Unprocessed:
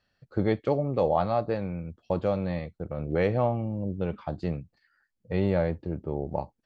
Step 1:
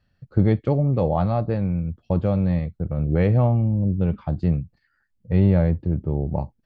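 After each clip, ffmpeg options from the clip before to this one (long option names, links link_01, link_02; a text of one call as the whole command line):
ffmpeg -i in.wav -af "bass=frequency=250:gain=13,treble=frequency=4000:gain=-4" out.wav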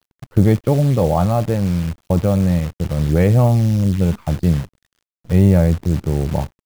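ffmpeg -i in.wav -af "acrusher=bits=7:dc=4:mix=0:aa=0.000001,volume=5dB" out.wav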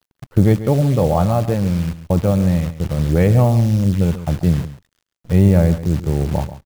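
ffmpeg -i in.wav -af "aecho=1:1:137:0.211" out.wav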